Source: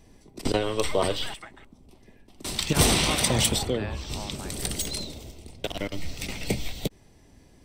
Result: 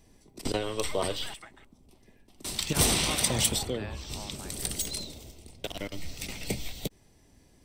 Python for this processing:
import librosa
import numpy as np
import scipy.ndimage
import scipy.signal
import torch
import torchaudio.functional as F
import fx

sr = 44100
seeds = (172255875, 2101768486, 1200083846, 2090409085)

y = fx.high_shelf(x, sr, hz=5000.0, db=6.0)
y = y * 10.0 ** (-5.5 / 20.0)